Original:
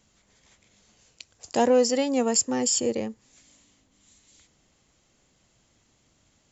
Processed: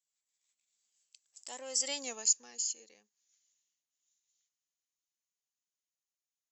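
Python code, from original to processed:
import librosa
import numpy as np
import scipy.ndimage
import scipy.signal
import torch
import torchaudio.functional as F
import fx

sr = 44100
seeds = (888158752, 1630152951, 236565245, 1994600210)

y = fx.doppler_pass(x, sr, speed_mps=17, closest_m=2.0, pass_at_s=1.98)
y = np.diff(y, prepend=0.0)
y = F.gain(torch.from_numpy(y), 5.5).numpy()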